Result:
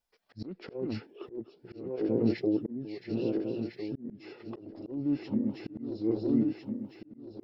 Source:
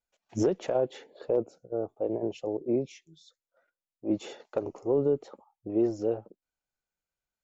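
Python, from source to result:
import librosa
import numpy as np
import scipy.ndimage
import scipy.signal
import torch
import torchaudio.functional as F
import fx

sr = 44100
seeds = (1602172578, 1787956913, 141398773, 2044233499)

y = fx.reverse_delay_fb(x, sr, ms=677, feedback_pct=64, wet_db=-6.0)
y = fx.formant_shift(y, sr, semitones=-5)
y = fx.auto_swell(y, sr, attack_ms=597.0)
y = F.gain(torch.from_numpy(y), 5.0).numpy()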